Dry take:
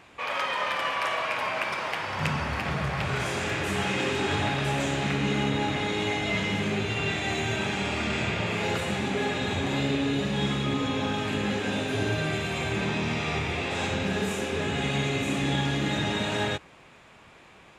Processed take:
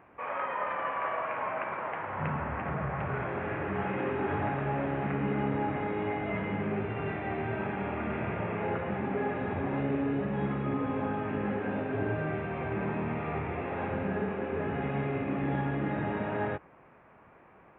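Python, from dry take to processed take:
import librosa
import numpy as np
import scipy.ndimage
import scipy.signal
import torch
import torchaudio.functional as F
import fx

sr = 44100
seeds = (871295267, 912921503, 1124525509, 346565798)

y = scipy.ndimage.gaussian_filter1d(x, 5.4, mode='constant')
y = fx.tilt_eq(y, sr, slope=1.5)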